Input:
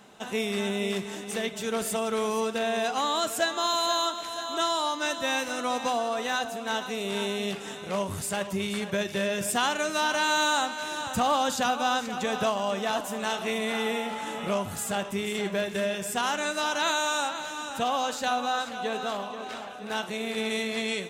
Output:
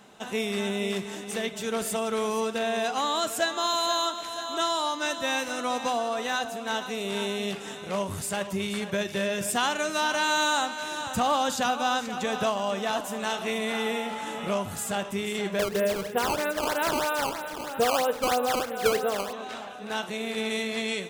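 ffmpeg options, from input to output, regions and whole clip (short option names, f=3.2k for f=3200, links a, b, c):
-filter_complex "[0:a]asettb=1/sr,asplit=3[a][b][c];[a]atrim=end=15.594[d];[b]atrim=start=15.59:end=19.33,asetpts=PTS-STARTPTS,afade=t=in:d=0.004:c=qsin,afade=t=out:st=3.736:d=0.004:c=qsin,lowpass=f=2.9k:w=0.5412,lowpass=f=2.9k:w=1.3066,equalizer=f=470:w=3.4:g=12,acrusher=samples=14:mix=1:aa=0.000001:lfo=1:lforange=22.4:lforate=3.1[e];[c]atrim=start=19.326[f];[d][e]acrossfade=d=0.004:c1=hsin:c2=qsin[g];[g][f]acrossfade=d=0.004:c1=qsin:c2=hsin"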